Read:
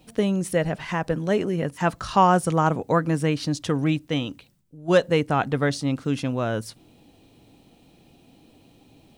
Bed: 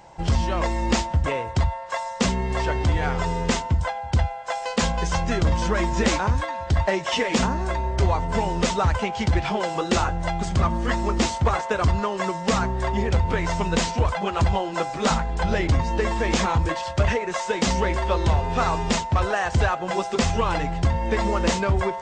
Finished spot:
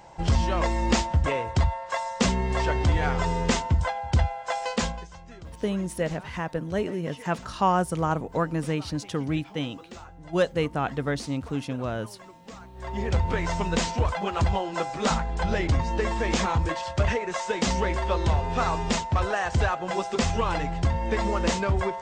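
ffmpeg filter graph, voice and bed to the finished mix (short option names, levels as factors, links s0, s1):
-filter_complex "[0:a]adelay=5450,volume=0.562[s0];[1:a]volume=7.94,afade=t=out:st=4.67:d=0.4:silence=0.0891251,afade=t=in:st=12.73:d=0.41:silence=0.112202[s1];[s0][s1]amix=inputs=2:normalize=0"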